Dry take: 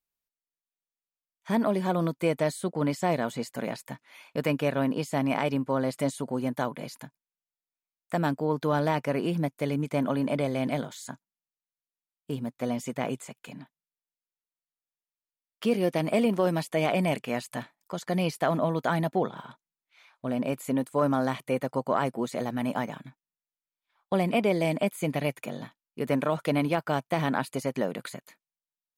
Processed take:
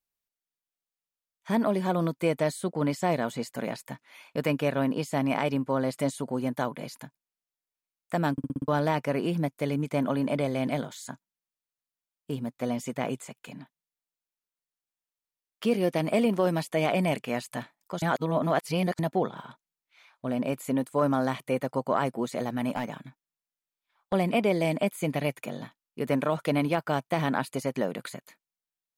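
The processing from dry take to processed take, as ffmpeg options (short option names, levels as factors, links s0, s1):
-filter_complex "[0:a]asettb=1/sr,asplit=3[s0][s1][s2];[s0]atrim=end=22.694[s3];[s1]atrim=start=22.69:end=24.13,asetpts=PTS-STARTPTS,afade=t=in:d=0.004:c=qsin,afade=t=out:st=1.436:d=0.004:c=qsin,aeval=exprs='clip(val(0),-1,0.0708)':c=same[s4];[s2]atrim=start=24.126[s5];[s3][s4]acrossfade=d=0.004:c1=hsin:c2=qsin[s6];[s6][s5]acrossfade=d=0.004:c1=qsin:c2=hsin,asplit=9[s7][s8][s9][s10][s11][s12][s13][s14][s15];[s7]atrim=end=8.382[s16];[s8]atrim=start=8.318:end=8.382[s17];[s9]atrim=start=8.318:end=8.382[s18];[s10]atrim=start=8.318:end=8.382[s19];[s11]atrim=start=8.318:end=8.382[s20];[s12]atrim=start=8.318:end=8.382[s21];[s13]atrim=start=8.678:end=18.022[s22];[s14]atrim=start=18.018:end=18.992,asetpts=PTS-STARTPTS,areverse[s23];[s15]atrim=start=18.988[s24];[s16][s17]acrossfade=d=0.004:c1=hsin:c2=hsin[s25];[s25][s18]acrossfade=d=0.004:c1=hsin:c2=hsin[s26];[s26][s19]acrossfade=d=0.004:c1=hsin:c2=hsin[s27];[s27][s20]acrossfade=d=0.004:c1=hsin:c2=hsin[s28];[s28][s21]acrossfade=d=0.004:c1=hsin:c2=hsin[s29];[s29][s22]acrossfade=d=0.004:c1=hsin:c2=hsin[s30];[s30][s23]acrossfade=d=0.004:c1=hsin:c2=hsin[s31];[s31][s24]acrossfade=d=0.004:c1=hsin:c2=hsin"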